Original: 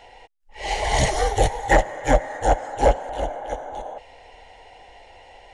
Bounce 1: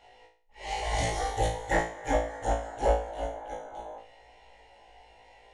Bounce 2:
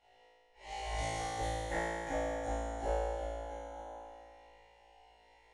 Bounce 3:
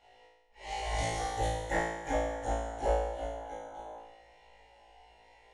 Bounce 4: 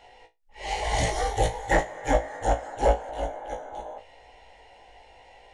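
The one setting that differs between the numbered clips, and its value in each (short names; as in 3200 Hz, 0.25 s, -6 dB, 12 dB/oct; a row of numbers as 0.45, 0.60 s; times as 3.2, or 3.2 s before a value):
resonator, decay: 0.43, 2.2, 0.98, 0.19 s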